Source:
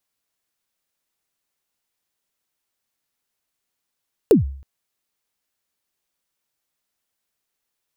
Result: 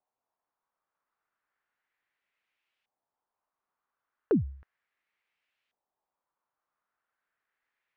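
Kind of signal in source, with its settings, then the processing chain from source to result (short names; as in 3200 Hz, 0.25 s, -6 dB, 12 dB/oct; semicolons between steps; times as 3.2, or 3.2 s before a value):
kick drum length 0.32 s, from 490 Hz, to 68 Hz, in 0.133 s, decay 0.54 s, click on, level -6 dB
low shelf 440 Hz -10.5 dB; limiter -17.5 dBFS; LFO low-pass saw up 0.35 Hz 770–2800 Hz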